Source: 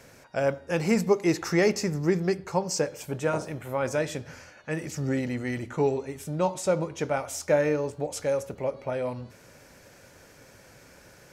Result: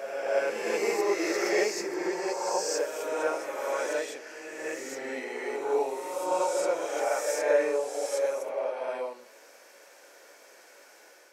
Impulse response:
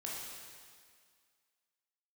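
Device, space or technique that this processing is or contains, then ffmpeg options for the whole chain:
ghost voice: -filter_complex "[0:a]areverse[a];[1:a]atrim=start_sample=2205[b];[a][b]afir=irnorm=-1:irlink=0,areverse,highpass=f=380:w=0.5412,highpass=f=380:w=1.3066"

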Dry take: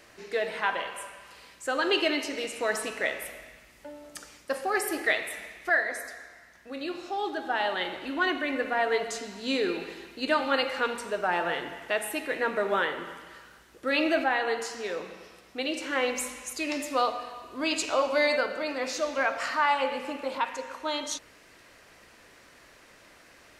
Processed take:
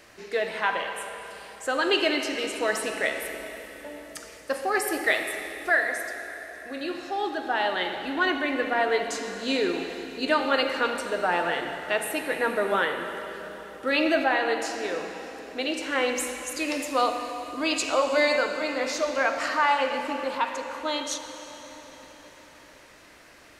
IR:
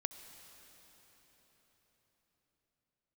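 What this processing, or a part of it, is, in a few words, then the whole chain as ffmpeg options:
cathedral: -filter_complex "[1:a]atrim=start_sample=2205[a];[0:a][a]afir=irnorm=-1:irlink=0,volume=3.5dB"

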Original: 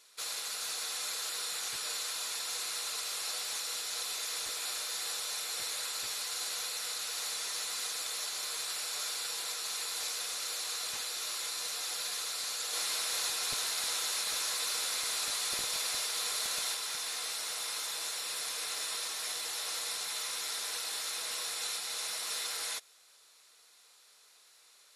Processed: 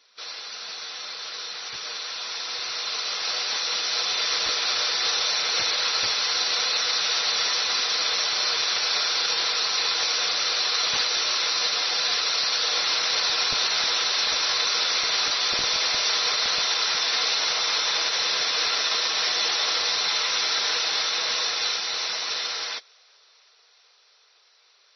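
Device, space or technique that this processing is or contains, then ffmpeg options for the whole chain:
low-bitrate web radio: -af "dynaudnorm=f=220:g=31:m=12.5dB,alimiter=limit=-16dB:level=0:latency=1:release=19,volume=3.5dB" -ar 24000 -c:a libmp3lame -b:a 24k

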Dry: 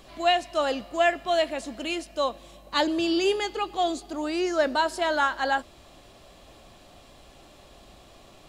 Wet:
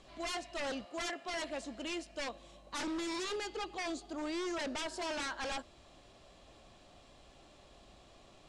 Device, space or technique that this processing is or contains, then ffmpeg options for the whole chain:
synthesiser wavefolder: -filter_complex "[0:a]asettb=1/sr,asplit=3[a][b][c];[a]atrim=end=0.854[d];[b]atrim=start=0.85:end=1.34,asetpts=PTS-STARTPTS,afade=t=in:d=0.004:c=qsin,afade=t=out:st=0.486:d=0.004:c=qsin,highpass=260[e];[c]atrim=start=1.336[f];[d][e]acrossfade=d=0.004:c1=hsin:c2=qsin[g];[g][f]acrossfade=d=0.004:c1=qsin:c2=hsin,aeval=exprs='0.0562*(abs(mod(val(0)/0.0562+3,4)-2)-1)':c=same,lowpass=f=8.9k:w=0.5412,lowpass=f=8.9k:w=1.3066,volume=-8dB"

